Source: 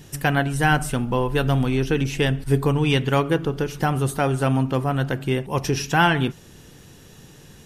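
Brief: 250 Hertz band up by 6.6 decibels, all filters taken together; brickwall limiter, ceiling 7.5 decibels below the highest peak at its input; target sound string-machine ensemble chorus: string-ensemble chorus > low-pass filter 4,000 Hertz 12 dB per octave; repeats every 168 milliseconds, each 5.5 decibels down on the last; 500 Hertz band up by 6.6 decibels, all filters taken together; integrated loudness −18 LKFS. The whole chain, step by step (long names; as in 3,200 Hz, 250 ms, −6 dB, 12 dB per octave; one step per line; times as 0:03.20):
parametric band 250 Hz +6.5 dB
parametric band 500 Hz +6 dB
brickwall limiter −9 dBFS
repeating echo 168 ms, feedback 53%, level −5.5 dB
string-ensemble chorus
low-pass filter 4,000 Hz 12 dB per octave
level +4 dB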